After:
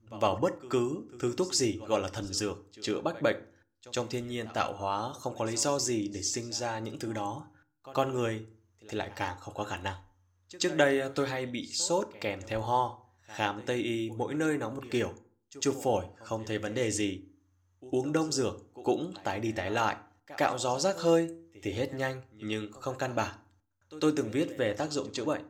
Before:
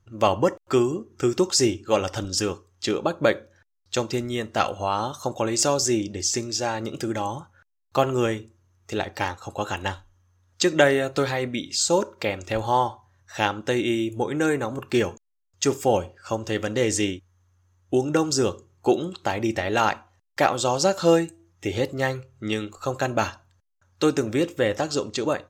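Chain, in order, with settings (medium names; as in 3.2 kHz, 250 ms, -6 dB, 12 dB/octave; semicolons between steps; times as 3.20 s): on a send: reverse echo 106 ms -19.5 dB; on the sum: FDN reverb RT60 0.47 s, low-frequency decay 1.25×, high-frequency decay 0.6×, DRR 13 dB; trim -7.5 dB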